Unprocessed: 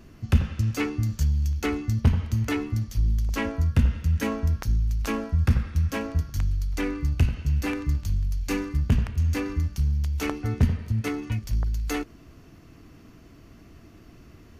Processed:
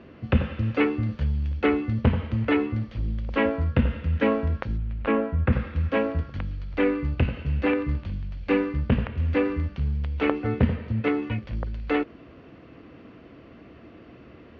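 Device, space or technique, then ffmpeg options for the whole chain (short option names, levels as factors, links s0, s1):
guitar cabinet: -filter_complex "[0:a]acrossover=split=4000[s0][s1];[s1]acompressor=threshold=0.002:ratio=4:attack=1:release=60[s2];[s0][s2]amix=inputs=2:normalize=0,highpass=95,equalizer=f=100:t=q:w=4:g=-7,equalizer=f=160:t=q:w=4:g=-5,equalizer=f=520:t=q:w=4:g=9,lowpass=f=3400:w=0.5412,lowpass=f=3400:w=1.3066,asplit=3[s3][s4][s5];[s3]afade=t=out:st=4.77:d=0.02[s6];[s4]lowpass=2700,afade=t=in:st=4.77:d=0.02,afade=t=out:st=5.51:d=0.02[s7];[s5]afade=t=in:st=5.51:d=0.02[s8];[s6][s7][s8]amix=inputs=3:normalize=0,volume=1.68"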